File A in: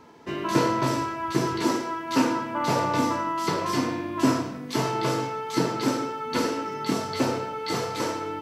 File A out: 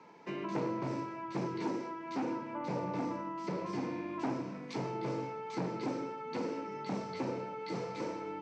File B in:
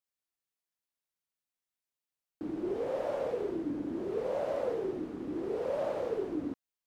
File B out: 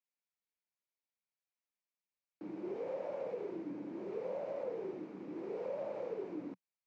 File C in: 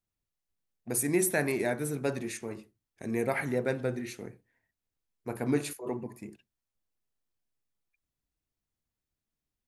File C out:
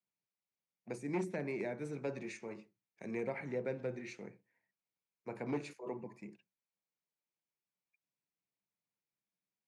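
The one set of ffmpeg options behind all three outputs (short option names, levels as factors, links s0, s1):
-filter_complex "[0:a]equalizer=f=180:t=o:w=0.62:g=11.5,acrossover=split=500[s0][s1];[s1]acompressor=threshold=0.0126:ratio=6[s2];[s0][s2]amix=inputs=2:normalize=0,asoftclip=type=hard:threshold=0.1,highpass=f=130:w=0.5412,highpass=f=130:w=1.3066,equalizer=f=160:t=q:w=4:g=-9,equalizer=f=240:t=q:w=4:g=-7,equalizer=f=540:t=q:w=4:g=4,equalizer=f=920:t=q:w=4:g=5,equalizer=f=2300:t=q:w=4:g=8,equalizer=f=3300:t=q:w=4:g=-3,lowpass=f=6800:w=0.5412,lowpass=f=6800:w=1.3066,volume=0.398"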